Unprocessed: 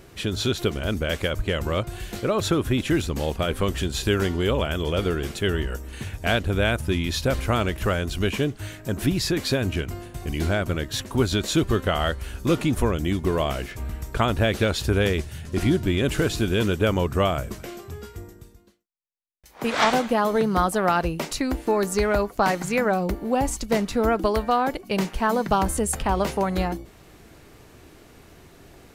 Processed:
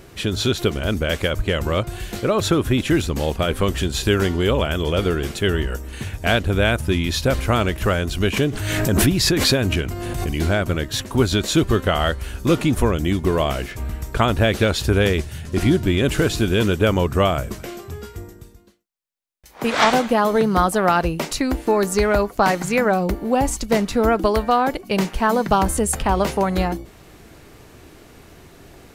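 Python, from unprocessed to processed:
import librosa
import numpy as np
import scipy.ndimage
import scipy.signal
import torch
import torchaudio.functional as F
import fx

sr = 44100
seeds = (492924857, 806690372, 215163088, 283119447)

y = fx.pre_swell(x, sr, db_per_s=24.0, at=(8.36, 10.26), fade=0.02)
y = y * 10.0 ** (4.0 / 20.0)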